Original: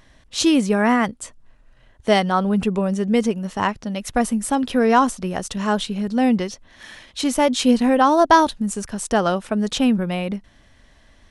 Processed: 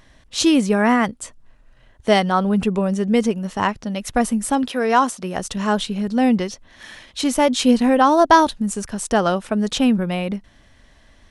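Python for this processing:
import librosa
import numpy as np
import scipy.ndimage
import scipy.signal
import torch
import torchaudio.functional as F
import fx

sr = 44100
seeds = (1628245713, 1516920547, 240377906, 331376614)

y = fx.highpass(x, sr, hz=fx.line((4.67, 680.0), (5.35, 190.0)), slope=6, at=(4.67, 5.35), fade=0.02)
y = F.gain(torch.from_numpy(y), 1.0).numpy()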